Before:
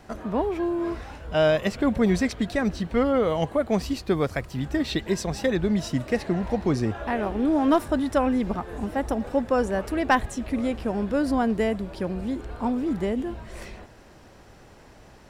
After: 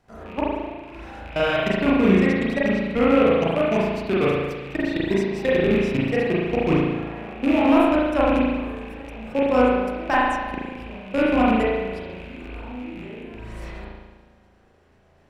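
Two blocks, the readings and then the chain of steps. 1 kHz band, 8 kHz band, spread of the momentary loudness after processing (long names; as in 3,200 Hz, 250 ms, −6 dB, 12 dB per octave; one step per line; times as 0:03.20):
+3.5 dB, can't be measured, 19 LU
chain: loose part that buzzes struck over −32 dBFS, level −20 dBFS
output level in coarse steps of 22 dB
spring reverb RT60 1.3 s, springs 36 ms, chirp 35 ms, DRR −7 dB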